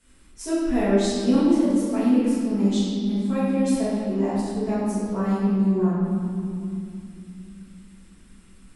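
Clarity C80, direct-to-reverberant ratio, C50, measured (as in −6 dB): 0.0 dB, −12.0 dB, −3.0 dB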